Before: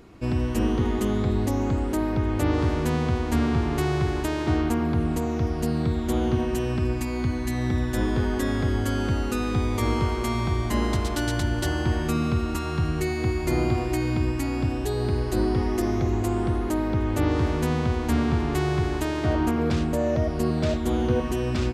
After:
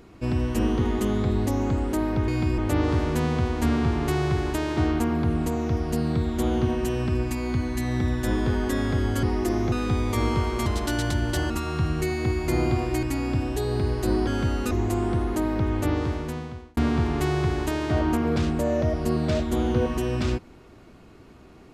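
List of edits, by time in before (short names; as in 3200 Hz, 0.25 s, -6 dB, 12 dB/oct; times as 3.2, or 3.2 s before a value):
8.93–9.37 swap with 15.56–16.05
10.31–10.95 cut
11.79–12.49 cut
14.02–14.32 move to 2.28
17.07–18.11 fade out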